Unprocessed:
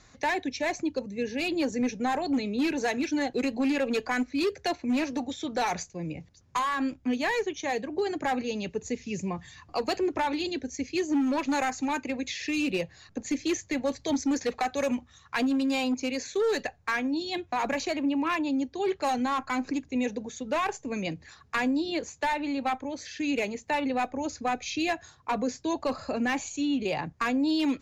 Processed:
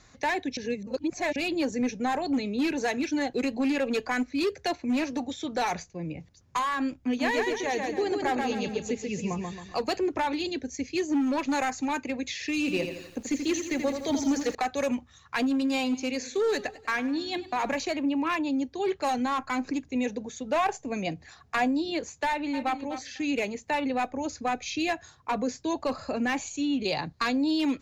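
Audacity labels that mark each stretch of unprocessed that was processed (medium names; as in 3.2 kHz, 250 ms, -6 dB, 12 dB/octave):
0.570000	1.360000	reverse
5.770000	6.190000	distance through air 97 m
7.040000	9.820000	feedback delay 136 ms, feedback 40%, level -3.5 dB
12.590000	14.550000	bit-crushed delay 83 ms, feedback 55%, word length 9-bit, level -6.5 dB
15.510000	17.720000	modulated delay 99 ms, feedback 49%, depth 87 cents, level -17.5 dB
20.430000	21.680000	peaking EQ 720 Hz +9.5 dB 0.24 oct
22.280000	22.760000	echo throw 250 ms, feedback 10%, level -11 dB
26.840000	27.440000	peaking EQ 4.2 kHz +15 dB 0.38 oct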